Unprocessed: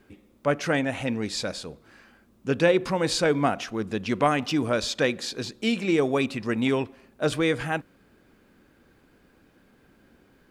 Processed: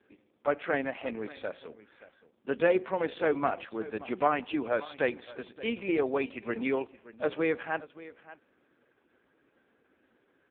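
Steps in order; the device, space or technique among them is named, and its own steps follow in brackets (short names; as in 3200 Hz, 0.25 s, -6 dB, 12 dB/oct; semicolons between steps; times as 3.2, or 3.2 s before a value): satellite phone (BPF 330–3300 Hz; echo 0.575 s -17.5 dB; gain -2.5 dB; AMR-NB 4.75 kbps 8000 Hz)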